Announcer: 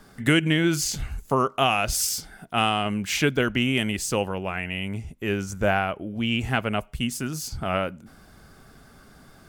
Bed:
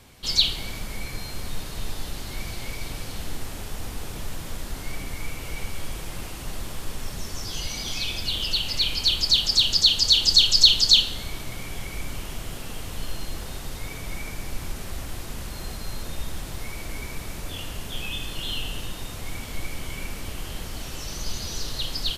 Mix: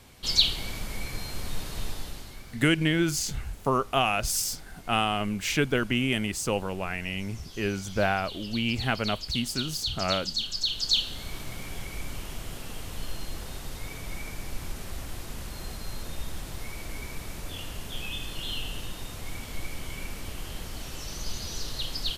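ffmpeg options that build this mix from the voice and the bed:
-filter_complex "[0:a]adelay=2350,volume=-3dB[a];[1:a]volume=9dB,afade=t=out:st=1.8:d=0.63:silence=0.237137,afade=t=in:st=10.65:d=0.72:silence=0.298538[b];[a][b]amix=inputs=2:normalize=0"

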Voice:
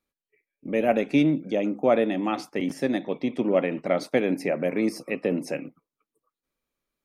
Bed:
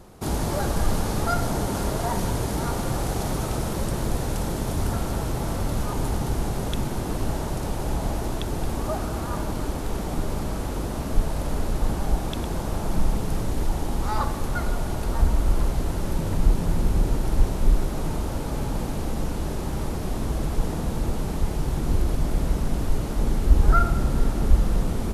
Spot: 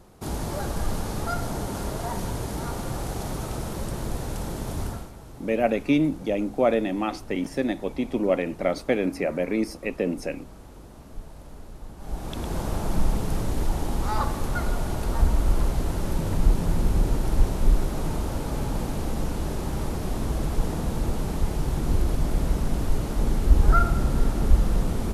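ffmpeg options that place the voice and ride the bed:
-filter_complex "[0:a]adelay=4750,volume=-0.5dB[a];[1:a]volume=12dB,afade=t=out:st=4.82:d=0.29:silence=0.237137,afade=t=in:st=11.97:d=0.62:silence=0.149624[b];[a][b]amix=inputs=2:normalize=0"

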